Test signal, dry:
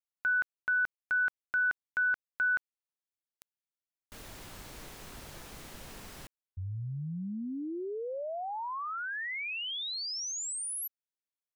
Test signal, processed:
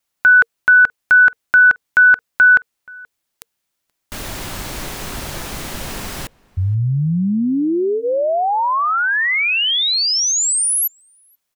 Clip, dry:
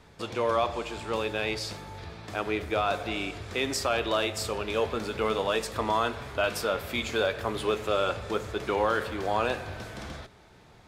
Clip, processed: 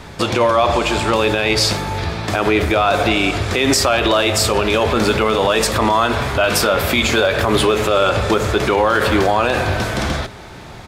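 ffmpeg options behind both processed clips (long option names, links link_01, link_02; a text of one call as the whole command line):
ffmpeg -i in.wav -filter_complex "[0:a]bandreject=frequency=460:width=15,asplit=2[link_01][link_02];[link_02]adelay=478.1,volume=-26dB,highshelf=frequency=4000:gain=-10.8[link_03];[link_01][link_03]amix=inputs=2:normalize=0,alimiter=level_in=24dB:limit=-1dB:release=50:level=0:latency=1,volume=-4.5dB" out.wav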